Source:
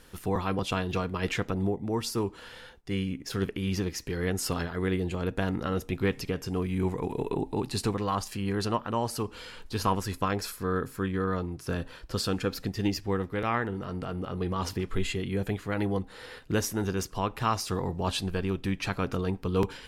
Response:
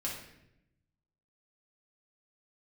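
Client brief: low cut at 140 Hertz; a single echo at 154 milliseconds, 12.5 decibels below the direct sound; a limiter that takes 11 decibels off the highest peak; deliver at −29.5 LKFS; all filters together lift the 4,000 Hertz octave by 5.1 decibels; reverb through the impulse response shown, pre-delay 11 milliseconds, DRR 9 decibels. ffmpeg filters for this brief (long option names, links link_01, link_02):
-filter_complex "[0:a]highpass=140,equalizer=frequency=4000:width_type=o:gain=6.5,alimiter=limit=-22dB:level=0:latency=1,aecho=1:1:154:0.237,asplit=2[link_01][link_02];[1:a]atrim=start_sample=2205,adelay=11[link_03];[link_02][link_03]afir=irnorm=-1:irlink=0,volume=-11.5dB[link_04];[link_01][link_04]amix=inputs=2:normalize=0,volume=3.5dB"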